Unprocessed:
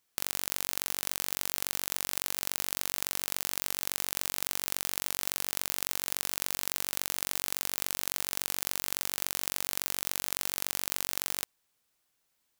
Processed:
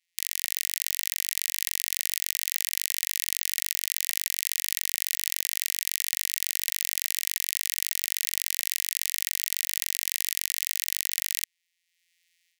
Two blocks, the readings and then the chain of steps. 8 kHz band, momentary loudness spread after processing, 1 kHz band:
+5.5 dB, 0 LU, below −30 dB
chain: samples sorted by size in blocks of 256 samples
automatic gain control
Chebyshev high-pass filter 1,900 Hz, order 6
level +3.5 dB

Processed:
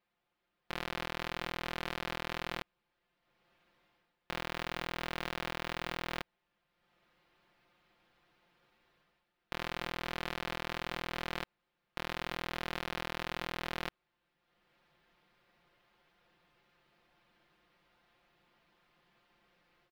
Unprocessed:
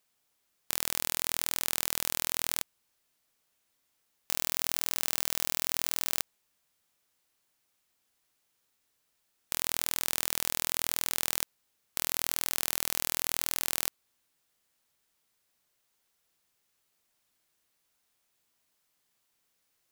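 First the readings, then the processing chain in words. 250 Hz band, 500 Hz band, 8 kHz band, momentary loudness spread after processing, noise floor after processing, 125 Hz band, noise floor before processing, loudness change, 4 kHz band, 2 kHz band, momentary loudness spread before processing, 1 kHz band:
+3.5 dB, +2.5 dB, −24.0 dB, 5 LU, −83 dBFS, +3.0 dB, −76 dBFS, −9.0 dB, −6.5 dB, 0.0 dB, 5 LU, +2.0 dB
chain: comb filter 5.7 ms, depth 80%
automatic gain control gain up to 13 dB
high-frequency loss of the air 380 metres

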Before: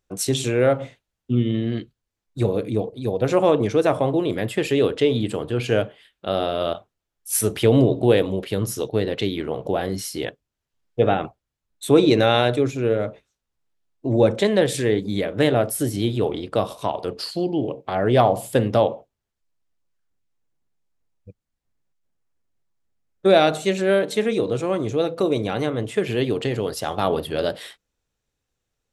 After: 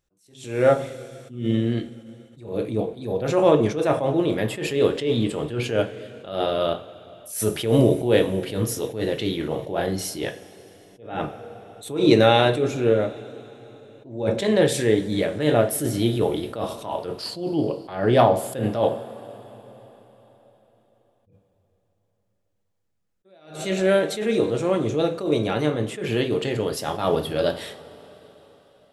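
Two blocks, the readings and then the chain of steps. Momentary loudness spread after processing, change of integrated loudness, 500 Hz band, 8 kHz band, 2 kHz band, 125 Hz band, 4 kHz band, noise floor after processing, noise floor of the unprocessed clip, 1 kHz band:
16 LU, −1.5 dB, −1.5 dB, −3.0 dB, −1.5 dB, −2.0 dB, −1.0 dB, −70 dBFS, −82 dBFS, −1.5 dB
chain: coupled-rooms reverb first 0.29 s, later 4.3 s, from −21 dB, DRR 5.5 dB
level that may rise only so fast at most 110 dB per second

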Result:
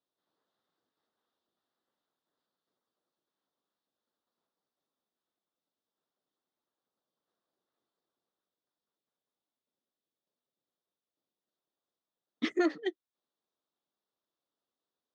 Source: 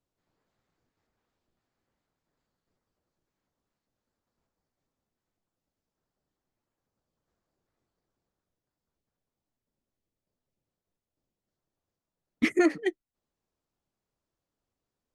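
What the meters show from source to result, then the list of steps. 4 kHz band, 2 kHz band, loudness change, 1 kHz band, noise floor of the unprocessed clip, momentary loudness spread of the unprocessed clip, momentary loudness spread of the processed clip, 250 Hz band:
−1.0 dB, −7.5 dB, −5.5 dB, −3.5 dB, below −85 dBFS, 9 LU, 9 LU, −6.0 dB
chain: loudspeaker in its box 270–5,700 Hz, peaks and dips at 1,200 Hz +3 dB, 2,300 Hz −10 dB, 3,600 Hz +9 dB
level −4 dB

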